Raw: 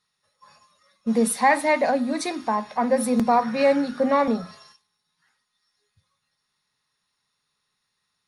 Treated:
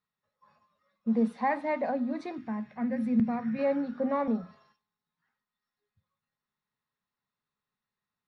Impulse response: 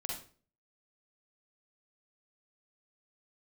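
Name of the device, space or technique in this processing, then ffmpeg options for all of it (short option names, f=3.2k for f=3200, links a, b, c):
phone in a pocket: -filter_complex "[0:a]lowpass=3.9k,equalizer=f=220:t=o:w=0.41:g=5,highshelf=f=2.4k:g=-11.5,asettb=1/sr,asplit=3[a][b][c];[a]atrim=end=2.384[d];[b]atrim=start=2.38:end=3.59,asetpts=PTS-STARTPTS,afade=t=in:d=0.004:c=qsin,afade=t=out:st=1.206:d=0.004:c=qsin,equalizer=f=125:t=o:w=1:g=11,equalizer=f=500:t=o:w=1:g=-6,equalizer=f=1k:t=o:w=1:g=-11,equalizer=f=2k:t=o:w=1:g=7,equalizer=f=4k:t=o:w=1:g=-4[e];[c]atrim=start=3.586[f];[d][e]acrossfade=d=0.004:c1=hsin:c2=qsin[g];[g][f]acrossfade=d=0.004:c1=qsin:c2=hsin,volume=-8.5dB"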